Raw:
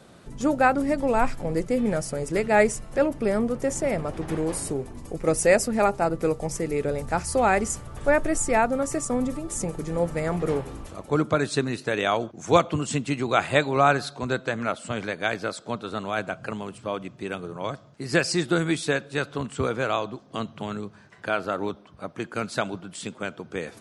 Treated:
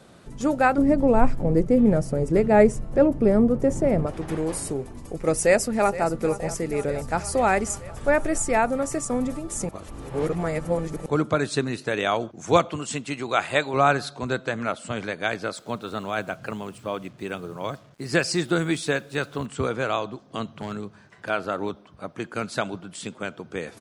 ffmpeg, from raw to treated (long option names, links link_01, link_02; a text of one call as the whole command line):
ffmpeg -i in.wav -filter_complex "[0:a]asettb=1/sr,asplit=3[link_01][link_02][link_03];[link_01]atrim=end=0.784[link_04];[link_02]atrim=start=0.78:end=4.07,asetpts=PTS-STARTPTS,afade=type=in:duration=0.004:curve=qsin,afade=type=out:start_time=3.286:duration=0.004:curve=qsin,tiltshelf=frequency=900:gain=8[link_05];[link_03]atrim=start=4.066[link_06];[link_04][link_05]acrossfade=duration=0.004:curve1=hsin:curve2=qsin[link_07];[link_07][link_06]acrossfade=duration=0.004:curve1=qsin:curve2=hsin,asplit=2[link_08][link_09];[link_09]afade=type=in:start_time=5.34:duration=0.01,afade=type=out:start_time=6.07:duration=0.01,aecho=0:1:470|940|1410|1880|2350|2820|3290|3760|4230|4700|5170:0.177828|0.133371|0.100028|0.0750212|0.0562659|0.0421994|0.0316496|0.0237372|0.0178029|0.0133522|0.0100141[link_10];[link_08][link_10]amix=inputs=2:normalize=0,asettb=1/sr,asplit=3[link_11][link_12][link_13];[link_11]atrim=end=12.704[link_14];[link_12]atrim=start=12.7:end=13.74,asetpts=PTS-STARTPTS,afade=type=in:duration=0.004:curve=qsin,afade=type=out:start_time=1.036:duration=0.004:curve=qsin,lowshelf=frequency=330:gain=-8[link_15];[link_13]atrim=start=13.736[link_16];[link_14][link_15]acrossfade=duration=0.004:curve1=hsin:curve2=qsin[link_17];[link_17][link_16]acrossfade=duration=0.004:curve1=qsin:curve2=hsin,asettb=1/sr,asplit=3[link_18][link_19][link_20];[link_18]atrim=end=15.554[link_21];[link_19]atrim=start=15.55:end=19.46,asetpts=PTS-STARTPTS,afade=type=in:duration=0.004:curve=qsin,afade=type=out:start_time=3.906:duration=0.004:curve=qsin,acrusher=bits=8:mix=0:aa=0.5[link_22];[link_20]atrim=start=19.456[link_23];[link_21][link_22]acrossfade=duration=0.004:curve1=hsin:curve2=qsin[link_24];[link_24][link_23]acrossfade=duration=0.004:curve1=qsin:curve2=hsin,asettb=1/sr,asplit=3[link_25][link_26][link_27];[link_25]atrim=end=20.604[link_28];[link_26]atrim=start=20.6:end=21.3,asetpts=PTS-STARTPTS,afade=type=in:duration=0.004:curve=qsin,afade=type=out:start_time=0.696:duration=0.004:curve=qsin,asoftclip=type=hard:threshold=-24.5dB[link_29];[link_27]atrim=start=21.296[link_30];[link_28][link_29]acrossfade=duration=0.004:curve1=hsin:curve2=qsin[link_31];[link_31][link_30]acrossfade=duration=0.004:curve1=qsin:curve2=hsin,asplit=3[link_32][link_33][link_34];[link_32]atrim=end=9.692[link_35];[link_33]atrim=start=9.688:end=11.062,asetpts=PTS-STARTPTS,areverse[link_36];[link_34]atrim=start=11.058[link_37];[link_35][link_36]acrossfade=duration=0.004:curve1=hsin:curve2=hsin[link_38];[link_38][link_37]acrossfade=duration=0.004:curve1=hsin:curve2=hsin" out.wav